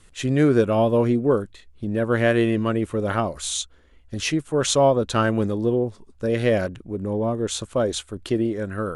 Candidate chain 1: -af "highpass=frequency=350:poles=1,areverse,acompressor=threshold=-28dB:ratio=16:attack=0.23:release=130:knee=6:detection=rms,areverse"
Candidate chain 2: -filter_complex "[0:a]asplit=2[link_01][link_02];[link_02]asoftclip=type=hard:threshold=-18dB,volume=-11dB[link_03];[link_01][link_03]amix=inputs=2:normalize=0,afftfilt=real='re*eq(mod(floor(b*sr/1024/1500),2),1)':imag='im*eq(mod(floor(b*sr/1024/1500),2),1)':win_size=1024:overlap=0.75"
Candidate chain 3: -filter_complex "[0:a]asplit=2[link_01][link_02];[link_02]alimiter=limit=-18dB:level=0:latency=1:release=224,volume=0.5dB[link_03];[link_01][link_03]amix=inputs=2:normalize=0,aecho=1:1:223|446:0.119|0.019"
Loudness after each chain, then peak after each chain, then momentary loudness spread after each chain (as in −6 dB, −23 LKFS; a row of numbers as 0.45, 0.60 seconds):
−37.0, −32.5, −18.5 LKFS; −25.5, −13.0, −4.0 dBFS; 4, 17, 9 LU